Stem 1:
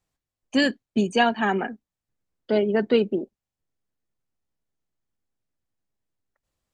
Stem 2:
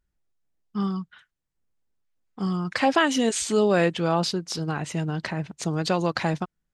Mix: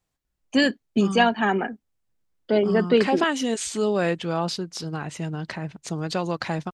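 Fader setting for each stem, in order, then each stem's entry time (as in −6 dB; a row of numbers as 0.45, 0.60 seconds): +1.0, −2.5 decibels; 0.00, 0.25 seconds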